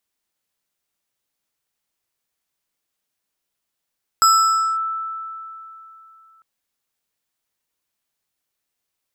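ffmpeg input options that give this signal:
-f lavfi -i "aevalsrc='0.355*pow(10,-3*t/3.15)*sin(2*PI*1320*t+0.78*clip(1-t/0.56,0,1)*sin(2*PI*4.86*1320*t))':d=2.2:s=44100"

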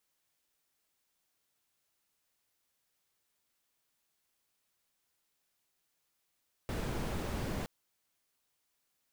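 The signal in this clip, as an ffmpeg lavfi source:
-f lavfi -i "anoisesrc=c=brown:a=0.0741:d=0.97:r=44100:seed=1"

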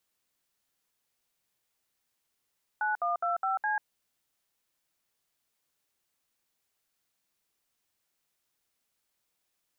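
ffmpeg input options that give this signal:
-f lavfi -i "aevalsrc='0.0355*clip(min(mod(t,0.207),0.142-mod(t,0.207))/0.002,0,1)*(eq(floor(t/0.207),0)*(sin(2*PI*852*mod(t,0.207))+sin(2*PI*1477*mod(t,0.207)))+eq(floor(t/0.207),1)*(sin(2*PI*697*mod(t,0.207))+sin(2*PI*1209*mod(t,0.207)))+eq(floor(t/0.207),2)*(sin(2*PI*697*mod(t,0.207))+sin(2*PI*1336*mod(t,0.207)))+eq(floor(t/0.207),3)*(sin(2*PI*770*mod(t,0.207))+sin(2*PI*1336*mod(t,0.207)))+eq(floor(t/0.207),4)*(sin(2*PI*852*mod(t,0.207))+sin(2*PI*1633*mod(t,0.207))))':d=1.035:s=44100"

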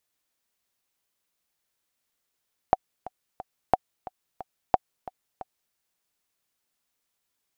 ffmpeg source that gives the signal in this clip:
-f lavfi -i "aevalsrc='pow(10,(-4.5-18.5*gte(mod(t,3*60/179),60/179))/20)*sin(2*PI*749*mod(t,60/179))*exp(-6.91*mod(t,60/179)/0.03)':d=3.01:s=44100"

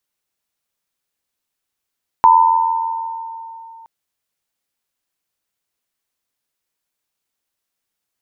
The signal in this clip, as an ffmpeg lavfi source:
-f lavfi -i "aevalsrc='0.447*pow(10,-3*t/3.14)*sin(2*PI*909*t)+0.398*pow(10,-3*t/1.94)*sin(2*PI*995*t)':d=1.62:s=44100"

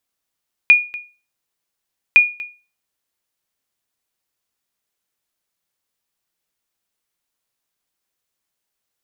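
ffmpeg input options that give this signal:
-f lavfi -i "aevalsrc='0.794*(sin(2*PI*2440*mod(t,1.46))*exp(-6.91*mod(t,1.46)/0.33)+0.106*sin(2*PI*2440*max(mod(t,1.46)-0.24,0))*exp(-6.91*max(mod(t,1.46)-0.24,0)/0.33))':d=2.92:s=44100"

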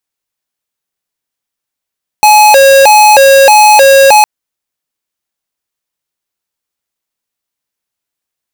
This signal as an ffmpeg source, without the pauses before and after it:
-f lavfi -i "aevalsrc='0.708*(2*lt(mod((695.5*t+150.5/1.6*(0.5-abs(mod(1.6*t,1)-0.5))),1),0.5)-1)':d=2.01:s=44100"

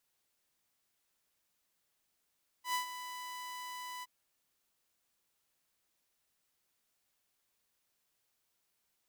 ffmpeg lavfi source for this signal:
-f lavfi -i "aevalsrc='0.0398*(2*mod(995*t,1)-1)':d=1.419:s=44100,afade=t=in:d=0.101,afade=t=out:st=0.101:d=0.112:silence=0.266,afade=t=out:st=1.39:d=0.029"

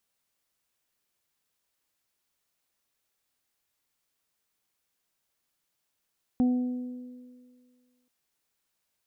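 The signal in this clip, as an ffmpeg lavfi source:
-f lavfi -i "aevalsrc='0.112*pow(10,-3*t/1.85)*sin(2*PI*249*t)+0.0141*pow(10,-3*t/2.22)*sin(2*PI*498*t)+0.0133*pow(10,-3*t/0.92)*sin(2*PI*747*t)':d=1.68:s=44100"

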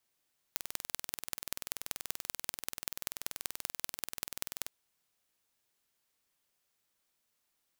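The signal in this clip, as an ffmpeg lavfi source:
-f lavfi -i "aevalsrc='0.531*eq(mod(n,2130),0)*(0.5+0.5*eq(mod(n,8520),0))':d=4.12:s=44100"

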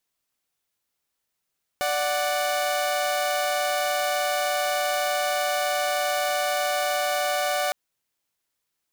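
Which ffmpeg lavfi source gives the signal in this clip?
-f lavfi -i "aevalsrc='0.0708*((2*mod(587.33*t,1)-1)+(2*mod(739.99*t,1)-1))':d=5.91:s=44100"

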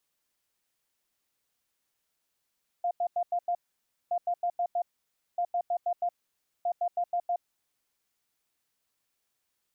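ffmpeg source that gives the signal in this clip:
-f lavfi -i "aevalsrc='0.0562*sin(2*PI*701*t)*clip(min(mod(mod(t,1.27),0.16),0.07-mod(mod(t,1.27),0.16))/0.005,0,1)*lt(mod(t,1.27),0.8)':d=5.08:s=44100"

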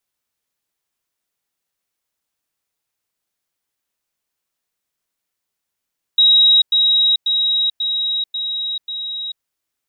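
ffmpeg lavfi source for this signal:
-f lavfi -i "aevalsrc='pow(10,(-8-3*floor(t/0.54))/20)*sin(2*PI*3820*t)*clip(min(mod(t,0.54),0.44-mod(t,0.54))/0.005,0,1)':d=3.24:s=44100"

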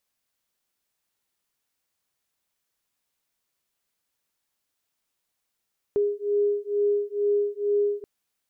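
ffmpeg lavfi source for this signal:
-f lavfi -i "aevalsrc='0.0596*(sin(2*PI*409*t)+sin(2*PI*411.2*t))':d=2.08:s=44100"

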